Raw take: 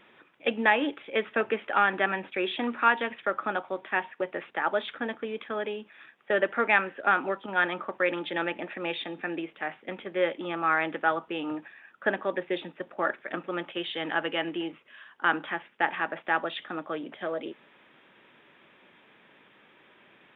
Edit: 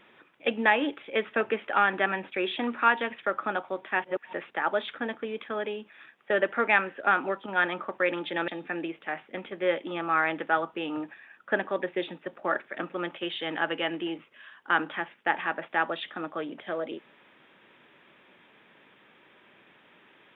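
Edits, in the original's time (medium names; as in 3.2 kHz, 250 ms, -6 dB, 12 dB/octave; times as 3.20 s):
4.04–4.33 s: reverse
8.48–9.02 s: delete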